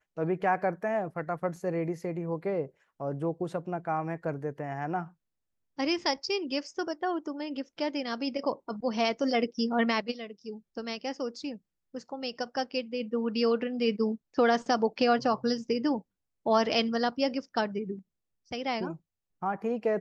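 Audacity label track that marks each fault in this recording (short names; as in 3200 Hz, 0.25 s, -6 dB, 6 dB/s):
1.560000	1.560000	gap 2.4 ms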